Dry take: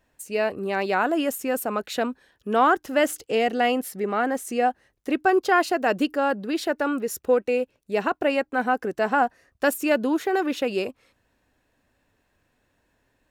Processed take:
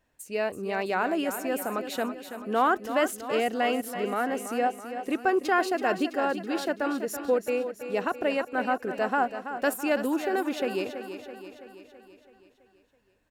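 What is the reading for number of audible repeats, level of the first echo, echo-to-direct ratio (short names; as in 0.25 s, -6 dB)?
6, -10.0 dB, -8.5 dB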